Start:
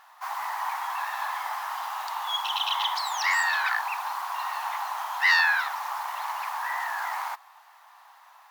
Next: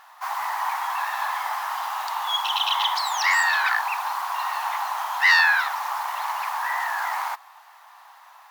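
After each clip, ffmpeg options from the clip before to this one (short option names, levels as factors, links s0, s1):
-af "acontrast=59,volume=0.794"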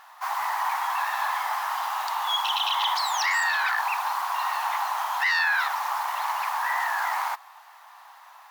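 -af "alimiter=limit=0.15:level=0:latency=1:release=18"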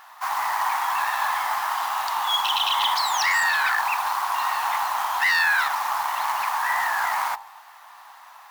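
-af "acrusher=bits=4:mode=log:mix=0:aa=0.000001,bandreject=f=50.24:t=h:w=4,bandreject=f=100.48:t=h:w=4,bandreject=f=150.72:t=h:w=4,bandreject=f=200.96:t=h:w=4,bandreject=f=251.2:t=h:w=4,bandreject=f=301.44:t=h:w=4,bandreject=f=351.68:t=h:w=4,bandreject=f=401.92:t=h:w=4,bandreject=f=452.16:t=h:w=4,bandreject=f=502.4:t=h:w=4,bandreject=f=552.64:t=h:w=4,bandreject=f=602.88:t=h:w=4,bandreject=f=653.12:t=h:w=4,bandreject=f=703.36:t=h:w=4,bandreject=f=753.6:t=h:w=4,bandreject=f=803.84:t=h:w=4,bandreject=f=854.08:t=h:w=4,bandreject=f=904.32:t=h:w=4,bandreject=f=954.56:t=h:w=4,bandreject=f=1004.8:t=h:w=4,volume=1.41"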